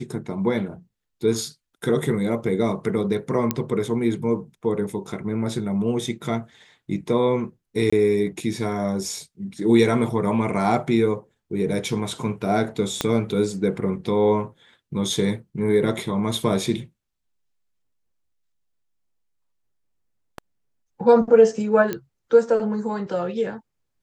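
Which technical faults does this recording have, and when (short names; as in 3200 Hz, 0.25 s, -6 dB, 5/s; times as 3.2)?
3.51 pop -6 dBFS
7.9–7.92 gap 25 ms
13.01 pop -7 dBFS
21.93 pop -12 dBFS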